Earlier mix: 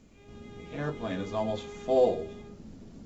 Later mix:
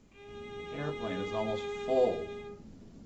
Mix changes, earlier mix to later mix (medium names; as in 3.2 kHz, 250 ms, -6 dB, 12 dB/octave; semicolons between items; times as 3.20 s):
speech -4.0 dB; background +6.5 dB